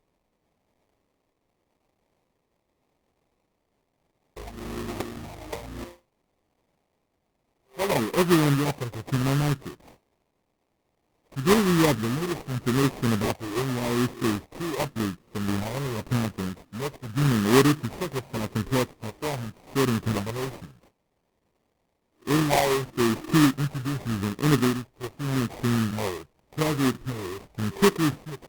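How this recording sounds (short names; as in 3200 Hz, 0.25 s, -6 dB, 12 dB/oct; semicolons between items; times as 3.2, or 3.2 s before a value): a quantiser's noise floor 12-bit, dither triangular; phasing stages 4, 0.87 Hz, lowest notch 210–2600 Hz; aliases and images of a low sample rate 1500 Hz, jitter 20%; Opus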